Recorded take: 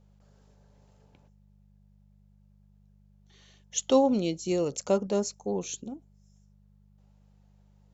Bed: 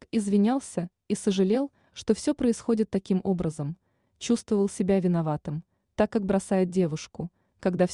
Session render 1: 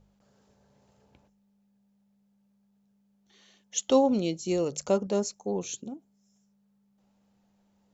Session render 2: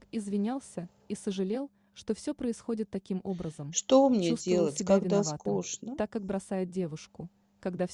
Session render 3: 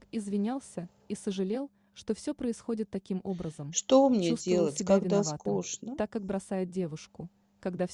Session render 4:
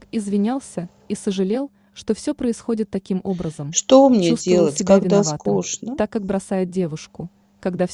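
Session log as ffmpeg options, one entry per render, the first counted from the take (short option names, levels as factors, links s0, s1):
-af "bandreject=f=50:t=h:w=4,bandreject=f=100:t=h:w=4,bandreject=f=150:t=h:w=4"
-filter_complex "[1:a]volume=0.376[s0];[0:a][s0]amix=inputs=2:normalize=0"
-af anull
-af "volume=3.55,alimiter=limit=0.891:level=0:latency=1"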